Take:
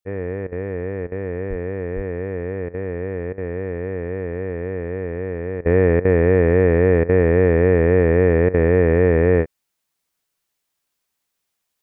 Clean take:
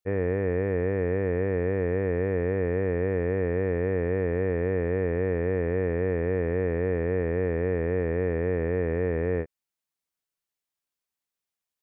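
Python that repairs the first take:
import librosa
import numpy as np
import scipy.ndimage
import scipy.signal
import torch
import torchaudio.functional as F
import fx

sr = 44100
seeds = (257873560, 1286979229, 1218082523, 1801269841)

y = fx.fix_deplosive(x, sr, at_s=(1.49, 1.95))
y = fx.fix_interpolate(y, sr, at_s=(0.47, 1.07, 2.69, 3.33, 5.61, 6.0, 7.04, 8.49), length_ms=48.0)
y = fx.fix_level(y, sr, at_s=5.65, step_db=-11.5)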